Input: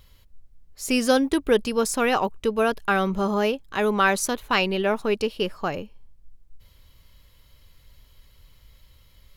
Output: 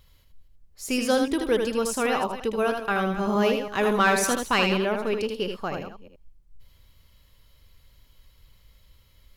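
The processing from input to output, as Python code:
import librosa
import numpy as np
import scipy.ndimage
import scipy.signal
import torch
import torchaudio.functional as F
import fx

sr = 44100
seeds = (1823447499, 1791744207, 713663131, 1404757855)

y = fx.reverse_delay(x, sr, ms=160, wet_db=-12)
y = fx.leveller(y, sr, passes=1, at=(3.27, 4.78))
y = y + 10.0 ** (-5.5 / 20.0) * np.pad(y, (int(79 * sr / 1000.0), 0))[:len(y)]
y = F.gain(torch.from_numpy(y), -4.0).numpy()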